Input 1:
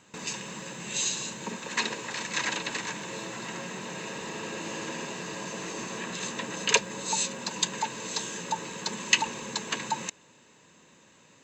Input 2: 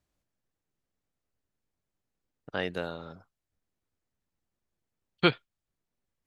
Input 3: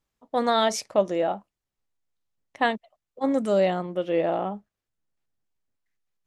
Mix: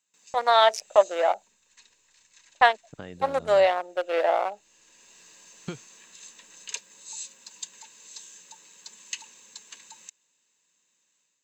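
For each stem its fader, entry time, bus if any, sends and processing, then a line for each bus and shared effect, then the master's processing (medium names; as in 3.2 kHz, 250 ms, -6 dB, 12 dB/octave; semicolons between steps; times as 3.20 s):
-14.0 dB, 0.00 s, no send, differentiator; auto duck -13 dB, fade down 1.60 s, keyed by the third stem
-12.5 dB, 0.45 s, no send, compression 6:1, threshold -34 dBFS, peak gain reduction 16 dB
0.0 dB, 0.00 s, no send, local Wiener filter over 41 samples; high-pass 670 Hz 24 dB/octave; gate -52 dBFS, range -17 dB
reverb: none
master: bass shelf 390 Hz +11 dB; level rider gain up to 6.5 dB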